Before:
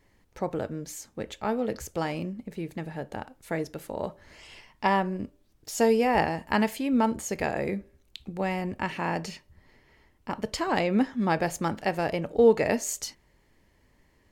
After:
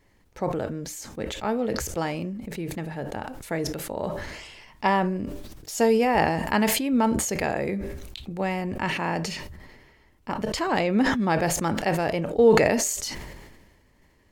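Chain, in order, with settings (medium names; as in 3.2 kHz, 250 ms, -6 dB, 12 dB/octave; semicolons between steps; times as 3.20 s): decay stretcher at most 39 dB/s; trim +1.5 dB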